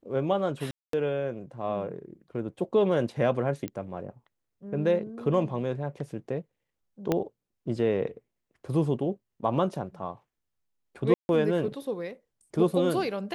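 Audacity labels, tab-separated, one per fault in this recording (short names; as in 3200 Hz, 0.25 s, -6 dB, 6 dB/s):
0.710000	0.930000	gap 0.223 s
3.680000	3.680000	pop -19 dBFS
7.120000	7.120000	pop -12 dBFS
11.140000	11.290000	gap 0.151 s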